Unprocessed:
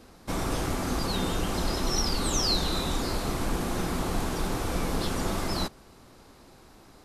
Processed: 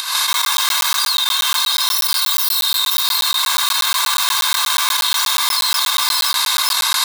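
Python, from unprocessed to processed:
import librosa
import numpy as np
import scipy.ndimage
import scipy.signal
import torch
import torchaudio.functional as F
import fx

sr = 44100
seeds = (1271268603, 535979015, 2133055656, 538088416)

y = fx.tracing_dist(x, sr, depth_ms=0.16)
y = scipy.signal.sosfilt(scipy.signal.butter(8, 870.0, 'highpass', fs=sr, output='sos'), y)
y = fx.high_shelf(y, sr, hz=6800.0, db=10.0)
y = fx.echo_multitap(y, sr, ms=(66, 235, 640), db=(-3.0, -7.5, -11.0))
y = fx.volume_shaper(y, sr, bpm=145, per_beat=1, depth_db=-16, release_ms=144.0, shape='slow start')
y = fx.peak_eq(y, sr, hz=3800.0, db=11.5, octaves=0.36)
y = y + 0.78 * np.pad(y, (int(1.9 * sr / 1000.0), 0))[:len(y)]
y = y + 10.0 ** (-14.0 / 20.0) * np.pad(y, (int(520 * sr / 1000.0), 0))[:len(y)]
y = fx.buffer_crackle(y, sr, first_s=0.33, period_s=0.12, block=512, kind='zero')
y = fx.env_flatten(y, sr, amount_pct=100)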